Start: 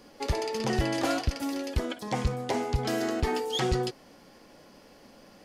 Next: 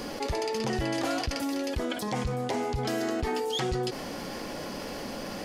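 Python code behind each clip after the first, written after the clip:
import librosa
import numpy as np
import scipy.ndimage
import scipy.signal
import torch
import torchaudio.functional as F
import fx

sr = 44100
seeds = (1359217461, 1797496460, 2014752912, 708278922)

y = fx.env_flatten(x, sr, amount_pct=70)
y = y * librosa.db_to_amplitude(-5.5)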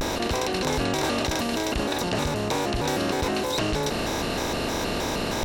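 y = fx.bin_compress(x, sr, power=0.4)
y = fx.vibrato_shape(y, sr, shape='square', rate_hz=3.2, depth_cents=250.0)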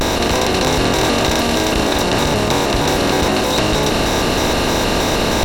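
y = fx.bin_compress(x, sr, power=0.6)
y = y + 10.0 ** (-7.5 / 20.0) * np.pad(y, (int(197 * sr / 1000.0), 0))[:len(y)]
y = y * librosa.db_to_amplitude(6.5)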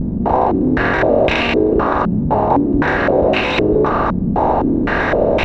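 y = fx.filter_held_lowpass(x, sr, hz=3.9, low_hz=200.0, high_hz=2500.0)
y = y * librosa.db_to_amplitude(-2.0)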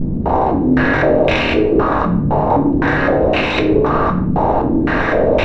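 y = fx.room_shoebox(x, sr, seeds[0], volume_m3=87.0, walls='mixed', distance_m=0.53)
y = y * librosa.db_to_amplitude(-1.5)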